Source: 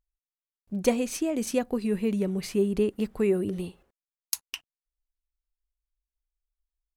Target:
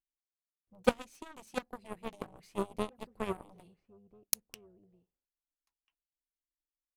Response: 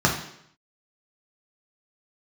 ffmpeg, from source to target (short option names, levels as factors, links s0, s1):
-filter_complex "[0:a]asplit=2[s0][s1];[s1]adelay=1341,volume=0.251,highshelf=f=4000:g=-30.2[s2];[s0][s2]amix=inputs=2:normalize=0,aeval=exprs='0.501*(cos(1*acos(clip(val(0)/0.501,-1,1)))-cos(1*PI/2))+0.02*(cos(3*acos(clip(val(0)/0.501,-1,1)))-cos(3*PI/2))+0.0708*(cos(7*acos(clip(val(0)/0.501,-1,1)))-cos(7*PI/2))':c=same,tremolo=f=300:d=0.519"